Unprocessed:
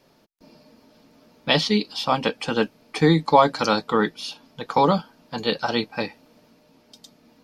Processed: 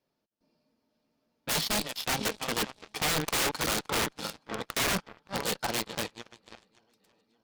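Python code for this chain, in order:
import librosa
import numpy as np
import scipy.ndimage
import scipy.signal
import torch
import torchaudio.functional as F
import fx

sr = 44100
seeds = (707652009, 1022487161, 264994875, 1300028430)

y = fx.reverse_delay_fb(x, sr, ms=285, feedback_pct=67, wet_db=-12.0)
y = (np.mod(10.0 ** (16.0 / 20.0) * y + 1.0, 2.0) - 1.0) / 10.0 ** (16.0 / 20.0)
y = fx.cheby_harmonics(y, sr, harmonics=(5, 7), levels_db=(-36, -15), full_scale_db=-16.0)
y = F.gain(torch.from_numpy(y), -6.5).numpy()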